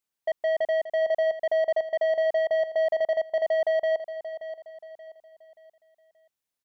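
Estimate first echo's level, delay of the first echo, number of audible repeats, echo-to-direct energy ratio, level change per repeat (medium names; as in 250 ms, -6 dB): -12.0 dB, 579 ms, 3, -11.5 dB, -8.5 dB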